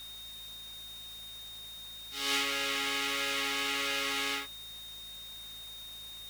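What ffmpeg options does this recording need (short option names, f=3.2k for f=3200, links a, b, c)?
-af "bandreject=f=54.6:t=h:w=4,bandreject=f=109.2:t=h:w=4,bandreject=f=163.8:t=h:w=4,bandreject=f=218.4:t=h:w=4,bandreject=f=3.7k:w=30,afwtdn=0.0022"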